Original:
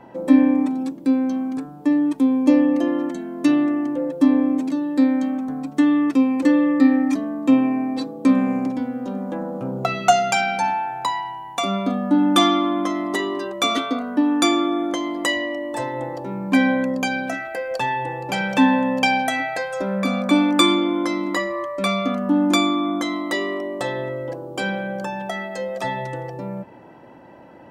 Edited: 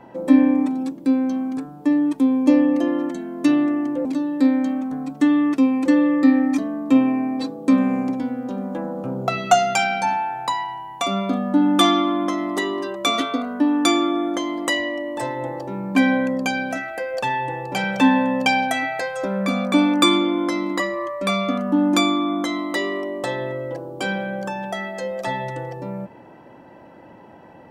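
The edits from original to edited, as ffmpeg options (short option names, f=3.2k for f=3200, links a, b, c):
-filter_complex "[0:a]asplit=2[a][b];[a]atrim=end=4.052[c];[b]atrim=start=4.618[d];[c][d]acrossfade=d=0.004:c1=hsin:c2=hsin"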